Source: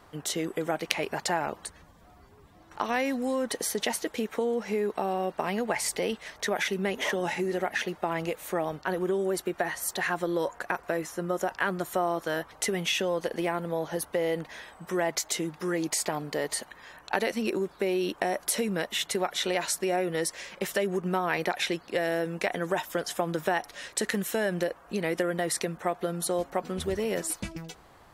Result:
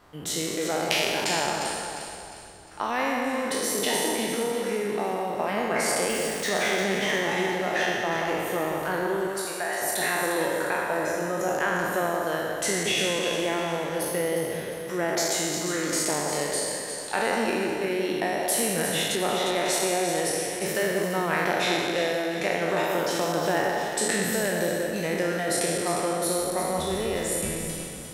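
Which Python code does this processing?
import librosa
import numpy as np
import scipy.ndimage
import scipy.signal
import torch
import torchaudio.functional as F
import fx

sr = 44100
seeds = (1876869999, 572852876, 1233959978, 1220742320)

y = fx.spec_trails(x, sr, decay_s=1.92)
y = fx.quant_dither(y, sr, seeds[0], bits=6, dither='none', at=(6.09, 6.49))
y = fx.highpass(y, sr, hz=720.0, slope=12, at=(9.27, 9.82))
y = fx.peak_eq(y, sr, hz=9500.0, db=-14.0, octaves=1.4, at=(19.15, 19.66))
y = fx.echo_alternate(y, sr, ms=177, hz=1400.0, feedback_pct=64, wet_db=-4.0)
y = y * 10.0 ** (-2.5 / 20.0)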